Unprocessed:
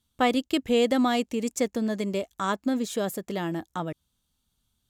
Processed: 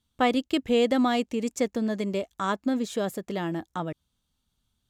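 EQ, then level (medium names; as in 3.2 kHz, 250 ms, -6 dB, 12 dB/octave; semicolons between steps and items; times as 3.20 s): treble shelf 8 kHz -8.5 dB; 0.0 dB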